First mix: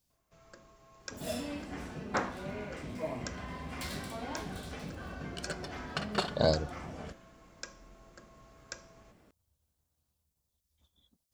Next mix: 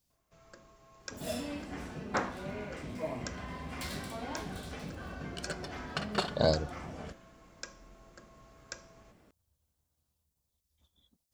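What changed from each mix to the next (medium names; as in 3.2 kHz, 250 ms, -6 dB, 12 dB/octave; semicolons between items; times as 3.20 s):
no change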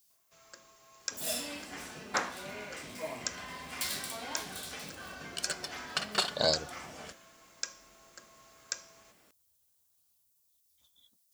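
master: add tilt EQ +3.5 dB/octave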